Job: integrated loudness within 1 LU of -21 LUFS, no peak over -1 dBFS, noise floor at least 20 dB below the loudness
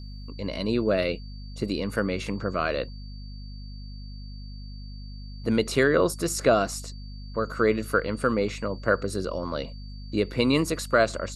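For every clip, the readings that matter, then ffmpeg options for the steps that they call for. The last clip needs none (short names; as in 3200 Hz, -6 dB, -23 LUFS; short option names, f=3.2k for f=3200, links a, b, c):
hum 50 Hz; harmonics up to 250 Hz; hum level -36 dBFS; steady tone 4600 Hz; tone level -50 dBFS; loudness -26.5 LUFS; peak -8.0 dBFS; loudness target -21.0 LUFS
-> -af "bandreject=f=50:t=h:w=4,bandreject=f=100:t=h:w=4,bandreject=f=150:t=h:w=4,bandreject=f=200:t=h:w=4,bandreject=f=250:t=h:w=4"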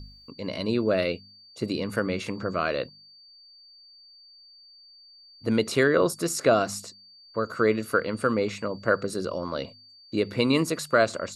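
hum none; steady tone 4600 Hz; tone level -50 dBFS
-> -af "bandreject=f=4.6k:w=30"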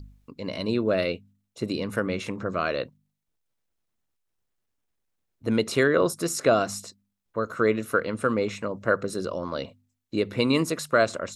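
steady tone none; loudness -26.5 LUFS; peak -8.0 dBFS; loudness target -21.0 LUFS
-> -af "volume=5.5dB"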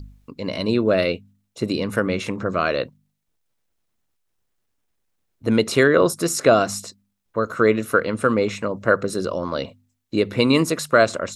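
loudness -21.0 LUFS; peak -2.5 dBFS; noise floor -74 dBFS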